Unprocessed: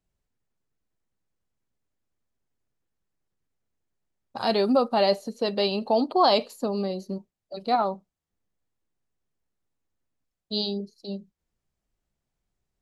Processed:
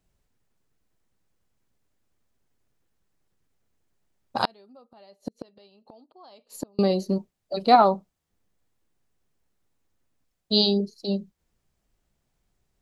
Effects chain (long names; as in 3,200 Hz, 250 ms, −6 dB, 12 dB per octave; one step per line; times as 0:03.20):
0:04.45–0:06.79: gate with flip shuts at −23 dBFS, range −38 dB
level +7.5 dB